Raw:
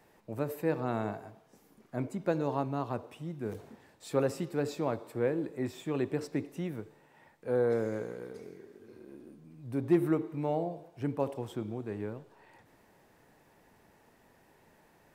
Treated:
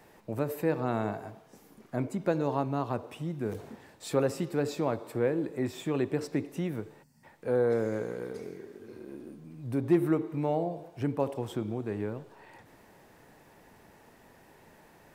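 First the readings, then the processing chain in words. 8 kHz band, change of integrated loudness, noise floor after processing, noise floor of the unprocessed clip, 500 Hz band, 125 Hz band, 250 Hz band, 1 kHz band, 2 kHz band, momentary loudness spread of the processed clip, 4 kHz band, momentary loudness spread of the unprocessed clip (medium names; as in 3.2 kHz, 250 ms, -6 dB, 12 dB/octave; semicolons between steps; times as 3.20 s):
+4.0 dB, +2.5 dB, -59 dBFS, -64 dBFS, +2.5 dB, +3.0 dB, +2.5 dB, +2.5 dB, +2.5 dB, 17 LU, +4.0 dB, 20 LU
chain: in parallel at 0 dB: compression, threshold -38 dBFS, peak gain reduction 17 dB; on the sum: time-frequency box 7.03–7.24 s, 260–4200 Hz -22 dB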